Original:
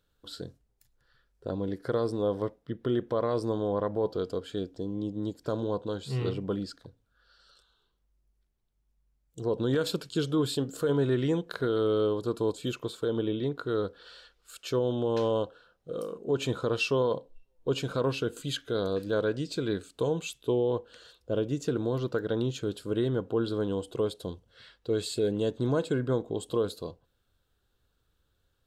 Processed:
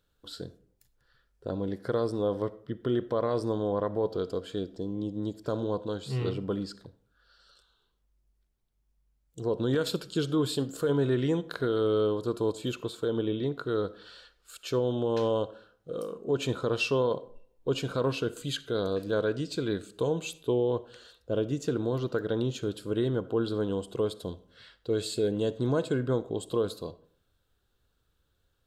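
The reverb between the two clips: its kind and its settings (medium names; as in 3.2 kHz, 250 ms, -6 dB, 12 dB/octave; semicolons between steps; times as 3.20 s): algorithmic reverb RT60 0.58 s, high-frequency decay 0.5×, pre-delay 20 ms, DRR 17.5 dB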